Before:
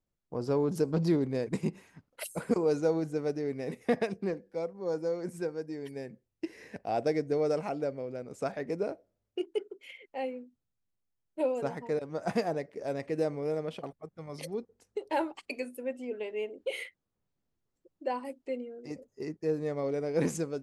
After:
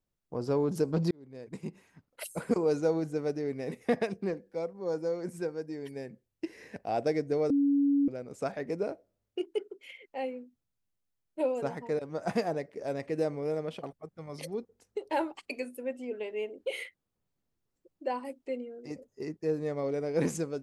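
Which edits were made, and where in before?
1.11–2.40 s: fade in
7.50–8.08 s: bleep 282 Hz -22 dBFS

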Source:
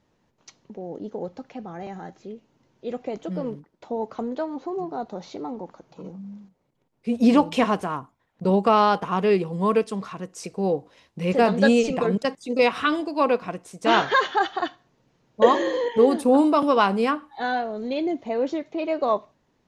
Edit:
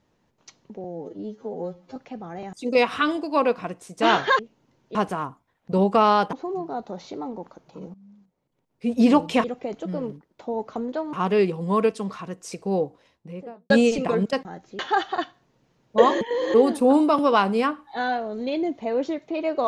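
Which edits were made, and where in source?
0.84–1.40 s: stretch 2×
1.97–2.31 s: swap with 12.37–14.23 s
2.87–4.56 s: swap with 7.67–9.05 s
6.17–7.12 s: fade in, from -16 dB
10.59–11.62 s: studio fade out
15.65–15.98 s: reverse

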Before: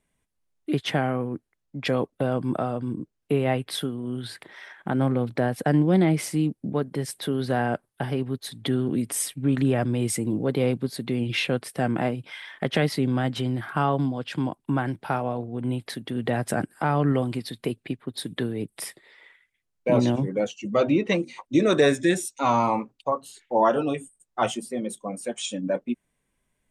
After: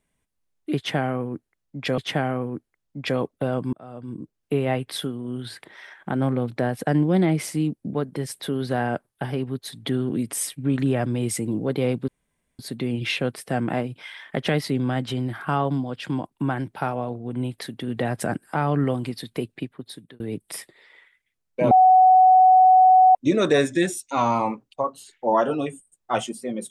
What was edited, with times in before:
0.77–1.98 s: loop, 2 plays
2.52–3.17 s: fade in
10.87 s: insert room tone 0.51 s
17.87–18.48 s: fade out
19.99–21.43 s: bleep 746 Hz -10 dBFS

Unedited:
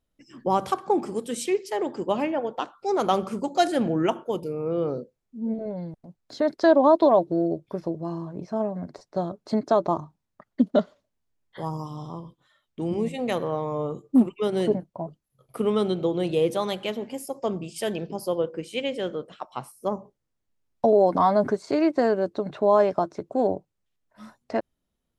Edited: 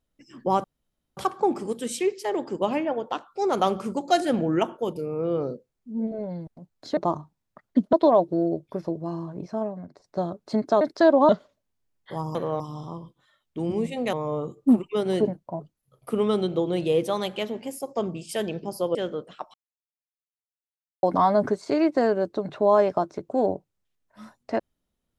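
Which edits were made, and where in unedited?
0.64 s: insert room tone 0.53 s
6.44–6.92 s: swap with 9.80–10.76 s
8.45–9.03 s: fade out linear, to -13 dB
13.35–13.60 s: move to 11.82 s
18.42–18.96 s: delete
19.55–21.04 s: mute

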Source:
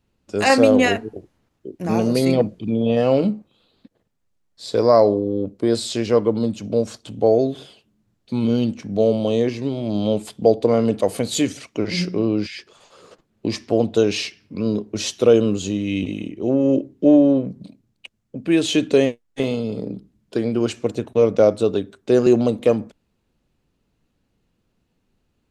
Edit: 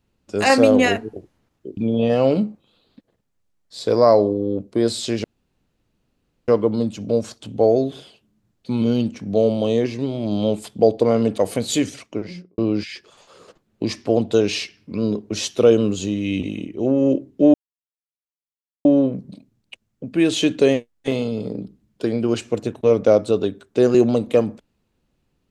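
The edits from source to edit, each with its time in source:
1.77–2.64 s: delete
6.11 s: insert room tone 1.24 s
11.55–12.21 s: studio fade out
17.17 s: insert silence 1.31 s

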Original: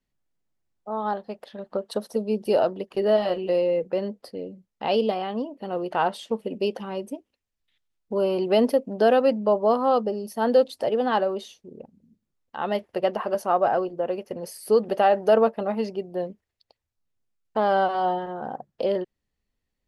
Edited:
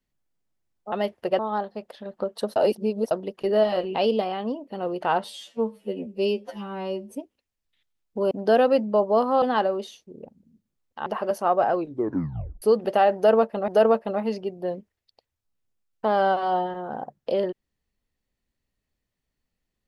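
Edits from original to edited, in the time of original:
2.09–2.64 s: reverse
3.48–4.85 s: delete
6.14–7.09 s: stretch 2×
8.26–8.84 s: delete
9.95–10.99 s: delete
12.63–13.10 s: move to 0.92 s
13.78 s: tape stop 0.88 s
15.20–15.72 s: loop, 2 plays

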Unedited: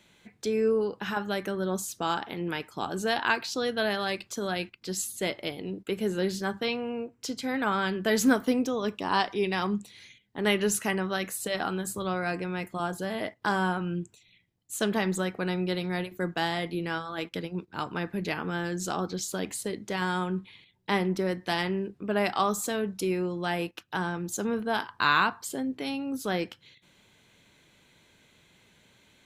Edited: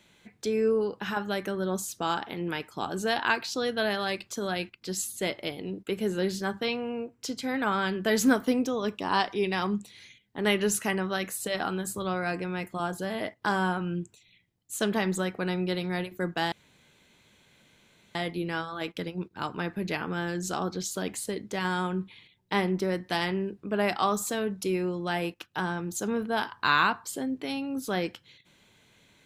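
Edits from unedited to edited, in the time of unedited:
16.52 s: insert room tone 1.63 s

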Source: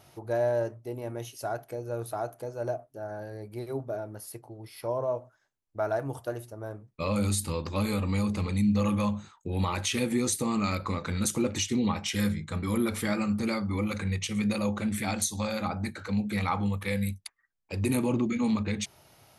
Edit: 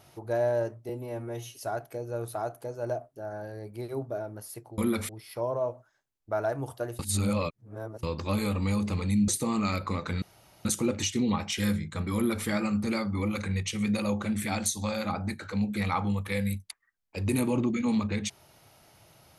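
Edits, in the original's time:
0.89–1.33 s: stretch 1.5×
6.46–7.50 s: reverse
8.75–10.27 s: delete
11.21 s: insert room tone 0.43 s
12.71–13.02 s: copy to 4.56 s

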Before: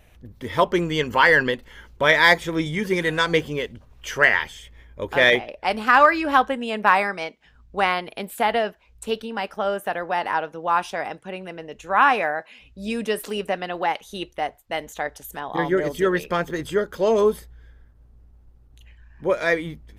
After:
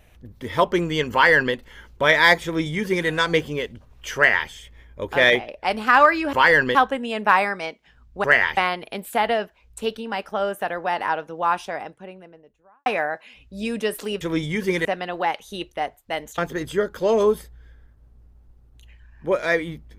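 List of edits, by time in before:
1.12–1.54 s: copy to 6.33 s
2.44–3.08 s: copy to 13.46 s
4.16–4.49 s: copy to 7.82 s
10.61–12.11 s: studio fade out
14.99–16.36 s: delete

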